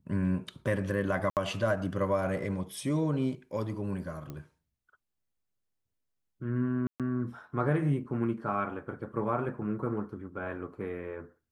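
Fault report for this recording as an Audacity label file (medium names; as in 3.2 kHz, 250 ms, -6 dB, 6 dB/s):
1.300000	1.370000	dropout 68 ms
4.300000	4.300000	pop -27 dBFS
6.870000	7.000000	dropout 127 ms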